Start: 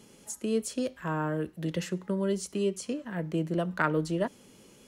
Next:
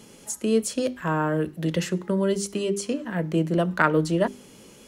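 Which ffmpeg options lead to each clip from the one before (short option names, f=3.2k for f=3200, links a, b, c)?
-af "bandreject=f=50:t=h:w=6,bandreject=f=100:t=h:w=6,bandreject=f=150:t=h:w=6,bandreject=f=200:t=h:w=6,bandreject=f=250:t=h:w=6,bandreject=f=300:t=h:w=6,bandreject=f=350:t=h:w=6,bandreject=f=400:t=h:w=6,volume=7dB"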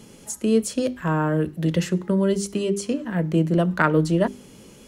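-af "lowshelf=f=230:g=7"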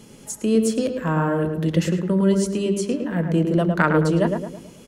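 -filter_complex "[0:a]asplit=2[a][b];[b]adelay=108,lowpass=f=1.7k:p=1,volume=-4dB,asplit=2[c][d];[d]adelay=108,lowpass=f=1.7k:p=1,volume=0.45,asplit=2[e][f];[f]adelay=108,lowpass=f=1.7k:p=1,volume=0.45,asplit=2[g][h];[h]adelay=108,lowpass=f=1.7k:p=1,volume=0.45,asplit=2[i][j];[j]adelay=108,lowpass=f=1.7k:p=1,volume=0.45,asplit=2[k][l];[l]adelay=108,lowpass=f=1.7k:p=1,volume=0.45[m];[a][c][e][g][i][k][m]amix=inputs=7:normalize=0"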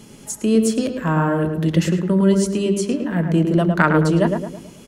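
-af "equalizer=f=500:w=7.3:g=-6,volume=3dB"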